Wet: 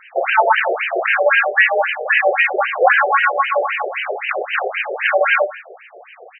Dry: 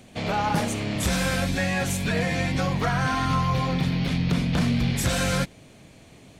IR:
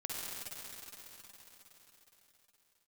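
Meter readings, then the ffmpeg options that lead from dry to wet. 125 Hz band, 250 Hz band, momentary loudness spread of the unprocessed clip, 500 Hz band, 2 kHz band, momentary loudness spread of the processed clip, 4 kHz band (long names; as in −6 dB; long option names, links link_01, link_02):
below −40 dB, below −15 dB, 3 LU, +13.0 dB, +15.0 dB, 8 LU, +2.0 dB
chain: -filter_complex "[0:a]afreqshift=57,equalizer=frequency=970:width=6.3:gain=-12,apsyclip=18.5dB,bandreject=frequency=150.1:width_type=h:width=4,bandreject=frequency=300.2:width_type=h:width=4,bandreject=frequency=450.3:width_type=h:width=4,bandreject=frequency=600.4:width_type=h:width=4,bandreject=frequency=750.5:width_type=h:width=4,bandreject=frequency=900.6:width_type=h:width=4,bandreject=frequency=1050.7:width_type=h:width=4,bandreject=frequency=1200.8:width_type=h:width=4,bandreject=frequency=1350.9:width_type=h:width=4,bandreject=frequency=1501:width_type=h:width=4,bandreject=frequency=1651.1:width_type=h:width=4,bandreject=frequency=1801.2:width_type=h:width=4,bandreject=frequency=1951.3:width_type=h:width=4,bandreject=frequency=2101.4:width_type=h:width=4,bandreject=frequency=2251.5:width_type=h:width=4,bandreject=frequency=2401.6:width_type=h:width=4,bandreject=frequency=2551.7:width_type=h:width=4,bandreject=frequency=2701.8:width_type=h:width=4,bandreject=frequency=2851.9:width_type=h:width=4,asplit=2[link_01][link_02];[link_02]aecho=0:1:169:0.1[link_03];[link_01][link_03]amix=inputs=2:normalize=0,afftfilt=real='re*between(b*sr/1024,530*pow(2200/530,0.5+0.5*sin(2*PI*3.8*pts/sr))/1.41,530*pow(2200/530,0.5+0.5*sin(2*PI*3.8*pts/sr))*1.41)':imag='im*between(b*sr/1024,530*pow(2200/530,0.5+0.5*sin(2*PI*3.8*pts/sr))/1.41,530*pow(2200/530,0.5+0.5*sin(2*PI*3.8*pts/sr))*1.41)':win_size=1024:overlap=0.75,volume=1.5dB"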